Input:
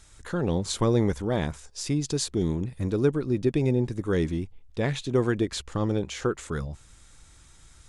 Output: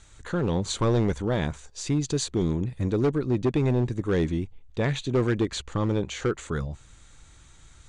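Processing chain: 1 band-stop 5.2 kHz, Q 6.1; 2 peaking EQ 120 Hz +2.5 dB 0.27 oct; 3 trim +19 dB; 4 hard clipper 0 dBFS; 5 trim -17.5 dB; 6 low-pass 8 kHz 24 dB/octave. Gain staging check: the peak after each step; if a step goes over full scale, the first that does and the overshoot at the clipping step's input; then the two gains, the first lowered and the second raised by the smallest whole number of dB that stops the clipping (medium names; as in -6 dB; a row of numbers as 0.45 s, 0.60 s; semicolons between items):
-11.5 dBFS, -10.5 dBFS, +8.5 dBFS, 0.0 dBFS, -17.5 dBFS, -17.0 dBFS; step 3, 8.5 dB; step 3 +10 dB, step 5 -8.5 dB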